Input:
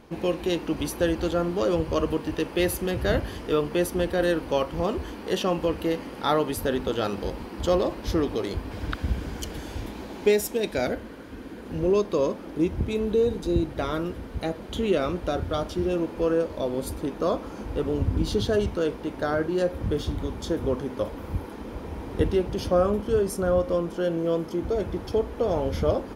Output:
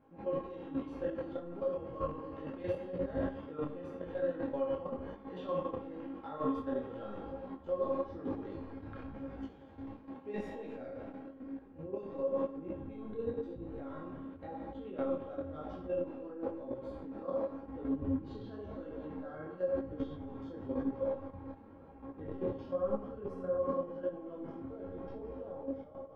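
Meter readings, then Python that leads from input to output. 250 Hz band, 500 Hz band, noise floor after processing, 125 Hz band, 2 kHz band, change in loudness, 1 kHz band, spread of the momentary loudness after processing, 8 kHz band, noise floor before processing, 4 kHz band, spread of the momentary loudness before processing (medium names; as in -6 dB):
-12.0 dB, -12.5 dB, -54 dBFS, -17.0 dB, -20.0 dB, -13.0 dB, -13.0 dB, 11 LU, under -35 dB, -40 dBFS, under -25 dB, 9 LU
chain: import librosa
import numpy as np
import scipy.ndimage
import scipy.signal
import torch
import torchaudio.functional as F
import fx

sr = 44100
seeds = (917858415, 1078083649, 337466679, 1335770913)

y = fx.fade_out_tail(x, sr, length_s=1.2)
y = scipy.signal.sosfilt(scipy.signal.butter(2, 93.0, 'highpass', fs=sr, output='sos'), y)
y = fx.rev_schroeder(y, sr, rt60_s=1.9, comb_ms=27, drr_db=9.0)
y = fx.transient(y, sr, attack_db=-1, sustain_db=11)
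y = scipy.signal.sosfilt(scipy.signal.butter(2, 1400.0, 'lowpass', fs=sr, output='sos'), y)
y = fx.low_shelf(y, sr, hz=130.0, db=5.0)
y = fx.comb_fb(y, sr, f0_hz=270.0, decay_s=0.28, harmonics='all', damping=0.0, mix_pct=90)
y = fx.room_early_taps(y, sr, ms=(33, 70), db=(-8.0, -8.0))
y = fx.level_steps(y, sr, step_db=11)
y = fx.detune_double(y, sr, cents=33)
y = y * librosa.db_to_amplitude(4.0)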